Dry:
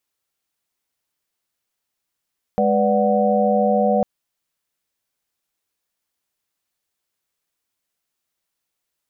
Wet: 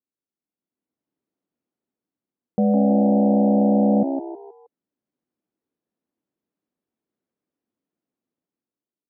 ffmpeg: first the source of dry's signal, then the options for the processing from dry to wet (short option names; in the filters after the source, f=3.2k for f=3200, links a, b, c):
-f lavfi -i "aevalsrc='0.1*(sin(2*PI*207.65*t)+sin(2*PI*493.88*t)+sin(2*PI*587.33*t)+sin(2*PI*739.99*t))':d=1.45:s=44100"
-filter_complex "[0:a]dynaudnorm=f=180:g=9:m=11.5dB,bandpass=f=250:t=q:w=2.2:csg=0,asplit=5[a][b][c][d][e];[b]adelay=158,afreqshift=65,volume=-7dB[f];[c]adelay=316,afreqshift=130,volume=-15.4dB[g];[d]adelay=474,afreqshift=195,volume=-23.8dB[h];[e]adelay=632,afreqshift=260,volume=-32.2dB[i];[a][f][g][h][i]amix=inputs=5:normalize=0"